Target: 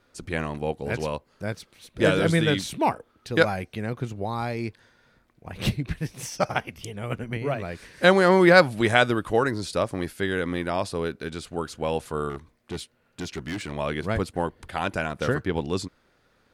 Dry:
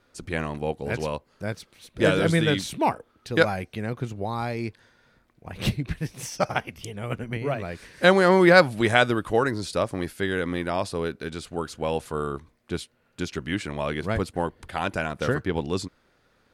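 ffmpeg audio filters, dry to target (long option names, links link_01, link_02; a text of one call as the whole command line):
ffmpeg -i in.wav -filter_complex "[0:a]asettb=1/sr,asplit=3[link_01][link_02][link_03];[link_01]atrim=end=12.294[link_04];[link_02]atrim=start=12.29:end=13.72,asetpts=PTS-STARTPTS,afade=type=in:duration=0.004:curve=qsin,afade=type=out:start_time=1.426:duration=0.004:curve=qsin,asoftclip=type=hard:threshold=-27.5dB[link_05];[link_03]atrim=start=13.716[link_06];[link_04][link_05]acrossfade=duration=0.004:curve1=hsin:curve2=qsin[link_07];[link_07][link_06]acrossfade=duration=0.004:curve1=qsin:curve2=hsin" out.wav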